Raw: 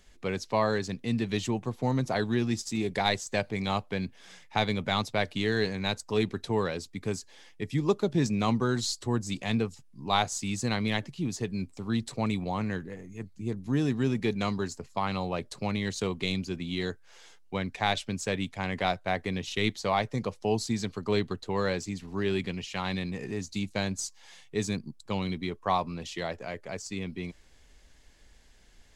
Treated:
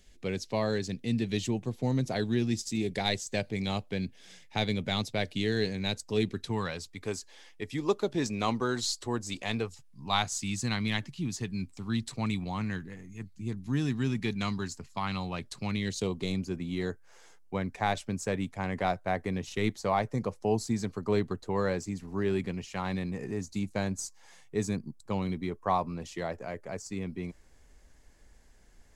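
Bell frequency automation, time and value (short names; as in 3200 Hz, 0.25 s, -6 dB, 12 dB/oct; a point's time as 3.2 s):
bell -9.5 dB 1.3 oct
6.25 s 1100 Hz
7.08 s 150 Hz
9.49 s 150 Hz
10.25 s 520 Hz
15.64 s 520 Hz
16.36 s 3400 Hz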